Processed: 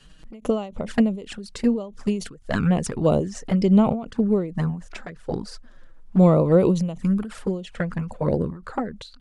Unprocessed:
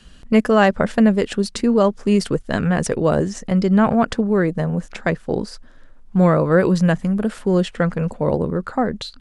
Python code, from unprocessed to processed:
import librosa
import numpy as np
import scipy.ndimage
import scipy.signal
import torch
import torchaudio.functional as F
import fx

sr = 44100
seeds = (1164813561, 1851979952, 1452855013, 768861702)

y = fx.env_flanger(x, sr, rest_ms=7.3, full_db=-13.0)
y = fx.end_taper(y, sr, db_per_s=110.0)